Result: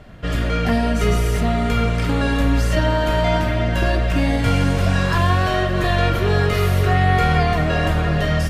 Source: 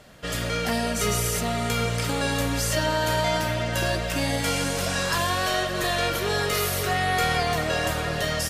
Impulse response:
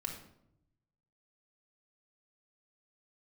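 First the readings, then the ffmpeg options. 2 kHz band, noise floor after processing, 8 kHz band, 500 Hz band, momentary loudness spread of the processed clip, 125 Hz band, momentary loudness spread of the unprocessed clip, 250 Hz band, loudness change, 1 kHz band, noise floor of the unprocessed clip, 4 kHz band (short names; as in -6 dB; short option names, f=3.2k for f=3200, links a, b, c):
+3.0 dB, -20 dBFS, -8.0 dB, +5.0 dB, 3 LU, +11.0 dB, 3 LU, +9.0 dB, +6.0 dB, +4.5 dB, -29 dBFS, -1.0 dB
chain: -filter_complex "[0:a]bass=f=250:g=10,treble=f=4k:g=-13,asplit=2[a][b];[1:a]atrim=start_sample=2205,atrim=end_sample=3528[c];[b][c]afir=irnorm=-1:irlink=0,volume=-2.5dB[d];[a][d]amix=inputs=2:normalize=0"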